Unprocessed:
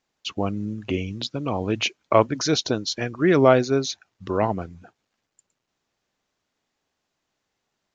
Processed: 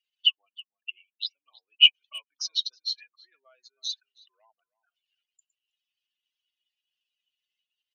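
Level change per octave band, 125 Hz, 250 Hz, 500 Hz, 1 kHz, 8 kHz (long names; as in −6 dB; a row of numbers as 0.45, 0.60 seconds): below −40 dB, below −40 dB, below −40 dB, below −35 dB, can't be measured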